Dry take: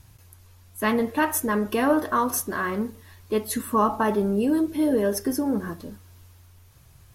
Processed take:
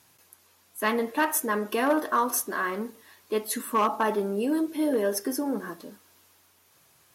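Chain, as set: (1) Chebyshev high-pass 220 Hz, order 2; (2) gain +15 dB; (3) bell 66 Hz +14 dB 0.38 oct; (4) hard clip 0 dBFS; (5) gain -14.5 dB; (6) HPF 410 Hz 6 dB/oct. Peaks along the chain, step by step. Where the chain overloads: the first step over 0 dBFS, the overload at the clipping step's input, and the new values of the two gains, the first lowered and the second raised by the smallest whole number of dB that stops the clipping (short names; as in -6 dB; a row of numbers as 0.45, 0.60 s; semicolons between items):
-9.5, +5.5, +5.5, 0.0, -14.5, -11.5 dBFS; step 2, 5.5 dB; step 2 +9 dB, step 5 -8.5 dB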